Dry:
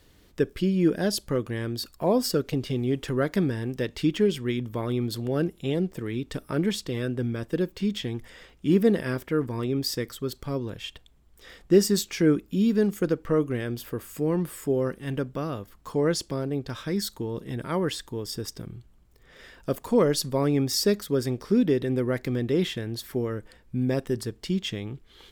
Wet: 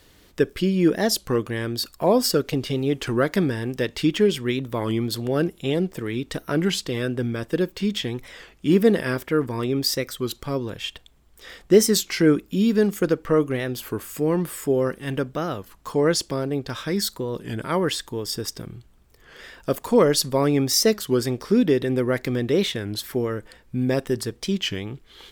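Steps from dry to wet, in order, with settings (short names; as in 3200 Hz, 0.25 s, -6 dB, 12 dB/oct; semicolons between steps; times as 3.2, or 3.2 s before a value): low shelf 360 Hz -5.5 dB; record warp 33 1/3 rpm, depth 160 cents; gain +6.5 dB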